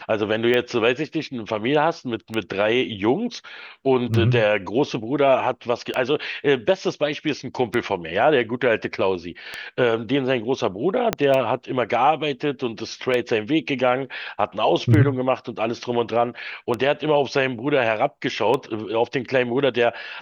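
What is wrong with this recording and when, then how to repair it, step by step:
tick 33 1/3 rpm -11 dBFS
11.13 s: pop -5 dBFS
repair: de-click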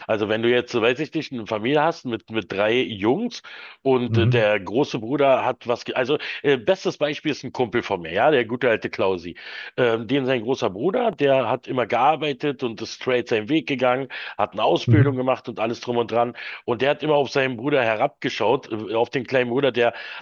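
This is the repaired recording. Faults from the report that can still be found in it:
11.13 s: pop

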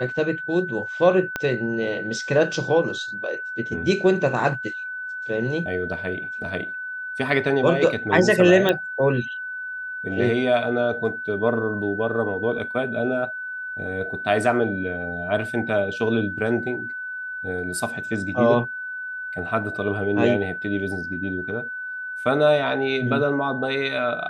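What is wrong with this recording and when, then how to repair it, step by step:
whine 1.5 kHz -29 dBFS
1.36 s: pop -11 dBFS
8.69 s: pop -8 dBFS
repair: de-click; band-stop 1.5 kHz, Q 30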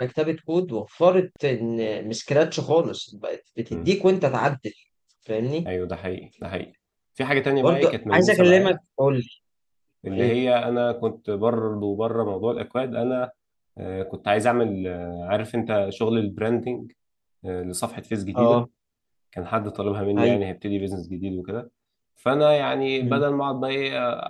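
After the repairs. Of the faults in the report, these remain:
1.36 s: pop

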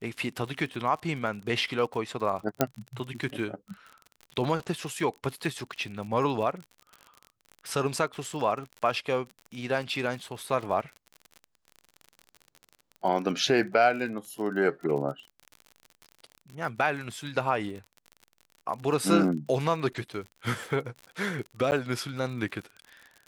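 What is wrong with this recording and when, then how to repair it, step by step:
crackle 46 per s -36 dBFS
2.61 s: pop -7 dBFS
21.71–21.72 s: dropout 9.7 ms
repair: de-click; interpolate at 21.71 s, 9.7 ms

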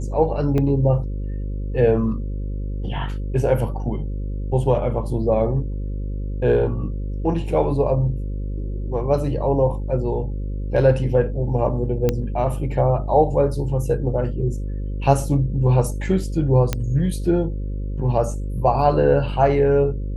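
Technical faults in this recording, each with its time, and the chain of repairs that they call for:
buzz 50 Hz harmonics 11 -26 dBFS
0.58 s: dropout 2.2 ms
12.09 s: pop -7 dBFS
16.73 s: pop -7 dBFS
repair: de-click; de-hum 50 Hz, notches 11; interpolate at 0.58 s, 2.2 ms

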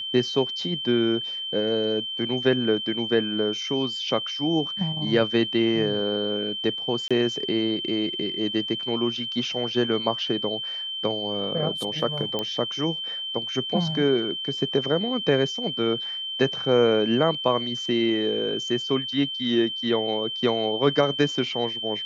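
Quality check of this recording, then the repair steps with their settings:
whine 3.1 kHz -29 dBFS
7.08–7.11 s: dropout 26 ms
12.39 s: pop -14 dBFS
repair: de-click; band-stop 3.1 kHz, Q 30; interpolate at 7.08 s, 26 ms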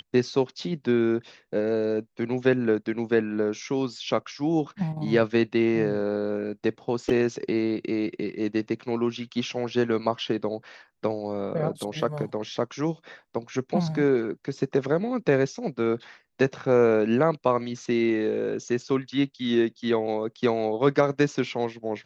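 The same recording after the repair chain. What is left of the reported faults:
nothing left

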